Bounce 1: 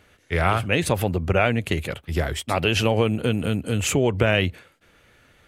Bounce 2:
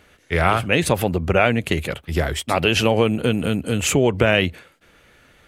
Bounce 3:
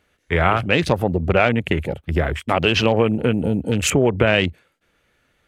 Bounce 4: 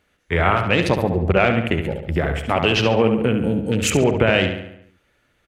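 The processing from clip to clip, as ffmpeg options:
-af "equalizer=f=100:t=o:w=0.38:g=-6,volume=3.5dB"
-filter_complex "[0:a]afwtdn=0.0398,asplit=2[a][b];[b]acompressor=threshold=-27dB:ratio=6,volume=1.5dB[c];[a][c]amix=inputs=2:normalize=0,volume=-1.5dB"
-filter_complex "[0:a]asplit=2[a][b];[b]adelay=70,lowpass=f=4.4k:p=1,volume=-6.5dB,asplit=2[c][d];[d]adelay=70,lowpass=f=4.4k:p=1,volume=0.55,asplit=2[e][f];[f]adelay=70,lowpass=f=4.4k:p=1,volume=0.55,asplit=2[g][h];[h]adelay=70,lowpass=f=4.4k:p=1,volume=0.55,asplit=2[i][j];[j]adelay=70,lowpass=f=4.4k:p=1,volume=0.55,asplit=2[k][l];[l]adelay=70,lowpass=f=4.4k:p=1,volume=0.55,asplit=2[m][n];[n]adelay=70,lowpass=f=4.4k:p=1,volume=0.55[o];[a][c][e][g][i][k][m][o]amix=inputs=8:normalize=0,volume=-1dB"

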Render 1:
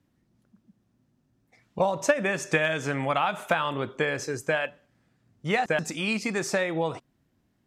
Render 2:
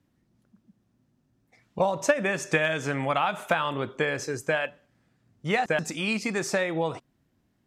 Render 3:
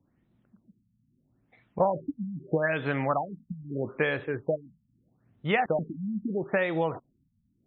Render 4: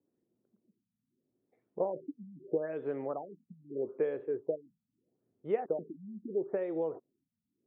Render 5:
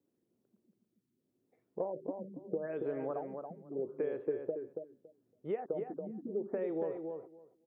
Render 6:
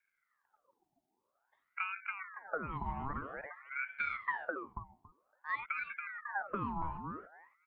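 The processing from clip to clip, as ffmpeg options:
-af anull
-af "afftfilt=real='re*lt(b*sr/1024,230*pow(4200/230,0.5+0.5*sin(2*PI*0.78*pts/sr)))':imag='im*lt(b*sr/1024,230*pow(4200/230,0.5+0.5*sin(2*PI*0.78*pts/sr)))':win_size=1024:overlap=0.75"
-af "bandpass=f=410:t=q:w=3.2:csg=0"
-filter_complex "[0:a]acompressor=threshold=-33dB:ratio=3,asplit=2[a][b];[b]adelay=280,lowpass=f=2.1k:p=1,volume=-5dB,asplit=2[c][d];[d]adelay=280,lowpass=f=2.1k:p=1,volume=0.16,asplit=2[e][f];[f]adelay=280,lowpass=f=2.1k:p=1,volume=0.16[g];[c][e][g]amix=inputs=3:normalize=0[h];[a][h]amix=inputs=2:normalize=0"
-af "aeval=exprs='val(0)*sin(2*PI*1200*n/s+1200*0.6/0.51*sin(2*PI*0.51*n/s))':c=same,volume=1dB"

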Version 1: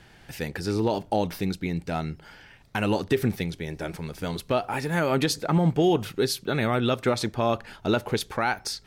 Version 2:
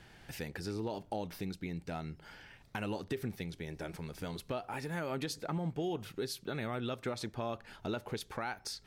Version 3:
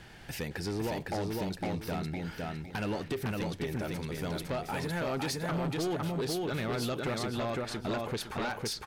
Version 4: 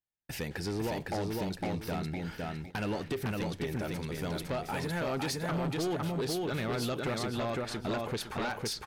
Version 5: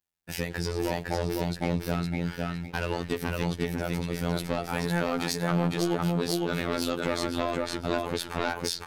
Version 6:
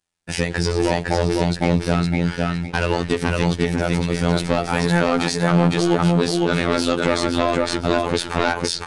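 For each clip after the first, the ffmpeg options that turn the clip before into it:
-af "acompressor=threshold=-37dB:ratio=2,volume=-4.5dB"
-filter_complex "[0:a]asplit=2[a][b];[b]aecho=0:1:508|1016|1524|2032:0.708|0.191|0.0516|0.0139[c];[a][c]amix=inputs=2:normalize=0,aeval=exprs='0.0708*sin(PI/2*2.24*val(0)/0.0708)':c=same,volume=-5dB"
-af "agate=range=-51dB:threshold=-43dB:ratio=16:detection=peak"
-af "afftfilt=real='hypot(re,im)*cos(PI*b)':imag='0':win_size=2048:overlap=0.75,volume=8dB"
-af "alimiter=level_in=10dB:limit=-1dB:release=50:level=0:latency=1" -ar 22050 -c:a aac -b:a 96k

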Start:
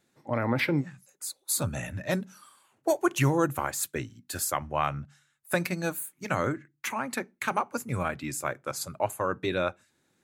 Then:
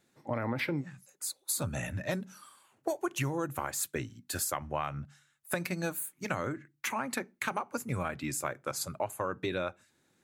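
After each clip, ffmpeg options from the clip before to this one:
-af "acompressor=threshold=-29dB:ratio=6"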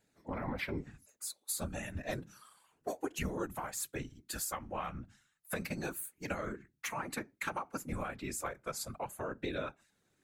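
-af "afftfilt=real='hypot(re,im)*cos(2*PI*random(0))':imag='hypot(re,im)*sin(2*PI*random(1))':win_size=512:overlap=0.75,flanger=delay=0.4:depth=3.4:regen=-69:speed=0.32:shape=sinusoidal,volume=5.5dB"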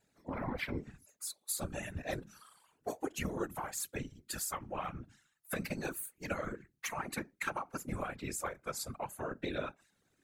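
-af "afftfilt=real='hypot(re,im)*cos(2*PI*random(0))':imag='hypot(re,im)*sin(2*PI*random(1))':win_size=512:overlap=0.75,volume=4dB"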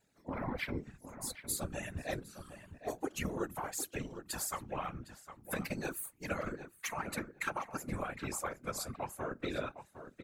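-filter_complex "[0:a]asplit=2[a][b];[b]adelay=759,lowpass=f=2.5k:p=1,volume=-10.5dB,asplit=2[c][d];[d]adelay=759,lowpass=f=2.5k:p=1,volume=0.17[e];[a][c][e]amix=inputs=3:normalize=0"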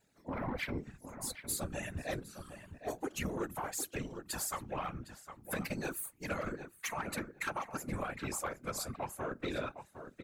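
-af "asoftclip=type=tanh:threshold=-29dB,volume=1.5dB"

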